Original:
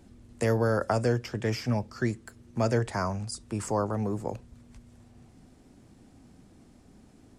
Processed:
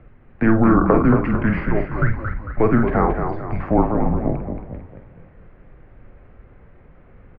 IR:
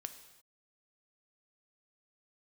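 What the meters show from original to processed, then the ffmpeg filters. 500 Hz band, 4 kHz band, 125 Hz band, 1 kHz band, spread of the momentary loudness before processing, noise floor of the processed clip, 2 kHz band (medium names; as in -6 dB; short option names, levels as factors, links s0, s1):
+7.5 dB, under -10 dB, +8.0 dB, +11.0 dB, 9 LU, -49 dBFS, +9.5 dB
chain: -filter_complex "[0:a]highpass=f=190:t=q:w=0.5412,highpass=f=190:t=q:w=1.307,lowpass=f=2500:t=q:w=0.5176,lowpass=f=2500:t=q:w=0.7071,lowpass=f=2500:t=q:w=1.932,afreqshift=-230,bandreject=f=980:w=20,asplit=2[s0][s1];[s1]adelay=48,volume=0.398[s2];[s0][s2]amix=inputs=2:normalize=0,asplit=7[s3][s4][s5][s6][s7][s8][s9];[s4]adelay=225,afreqshift=-37,volume=0.473[s10];[s5]adelay=450,afreqshift=-74,volume=0.226[s11];[s6]adelay=675,afreqshift=-111,volume=0.108[s12];[s7]adelay=900,afreqshift=-148,volume=0.0525[s13];[s8]adelay=1125,afreqshift=-185,volume=0.0251[s14];[s9]adelay=1350,afreqshift=-222,volume=0.012[s15];[s3][s10][s11][s12][s13][s14][s15]amix=inputs=7:normalize=0,asplit=2[s16][s17];[1:a]atrim=start_sample=2205,afade=t=out:st=0.17:d=0.01,atrim=end_sample=7938[s18];[s17][s18]afir=irnorm=-1:irlink=0,volume=0.891[s19];[s16][s19]amix=inputs=2:normalize=0,volume=2.37"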